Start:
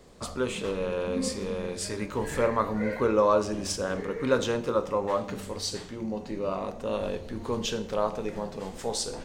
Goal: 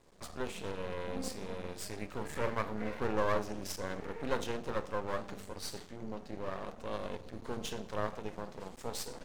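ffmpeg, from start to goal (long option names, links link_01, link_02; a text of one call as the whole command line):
ffmpeg -i in.wav -af "aeval=exprs='max(val(0),0)':channel_layout=same,volume=-5.5dB" out.wav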